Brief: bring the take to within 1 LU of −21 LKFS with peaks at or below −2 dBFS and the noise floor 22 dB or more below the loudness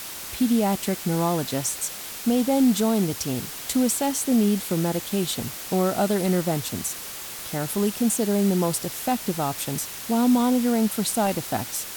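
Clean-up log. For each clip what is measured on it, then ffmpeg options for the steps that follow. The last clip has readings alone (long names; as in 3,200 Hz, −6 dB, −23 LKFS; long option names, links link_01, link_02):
background noise floor −36 dBFS; target noise floor −46 dBFS; integrated loudness −24.0 LKFS; sample peak −11.5 dBFS; target loudness −21.0 LKFS
→ -af "afftdn=noise_reduction=10:noise_floor=-36"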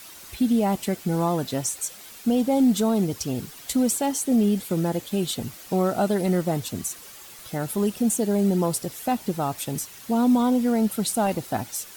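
background noise floor −44 dBFS; target noise floor −47 dBFS
→ -af "afftdn=noise_reduction=6:noise_floor=-44"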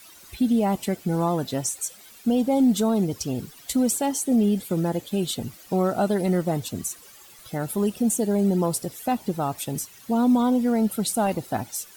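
background noise floor −49 dBFS; integrated loudness −24.5 LKFS; sample peak −12.5 dBFS; target loudness −21.0 LKFS
→ -af "volume=3.5dB"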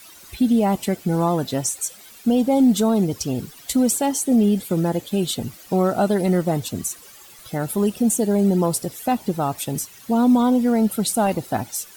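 integrated loudness −21.0 LKFS; sample peak −9.0 dBFS; background noise floor −45 dBFS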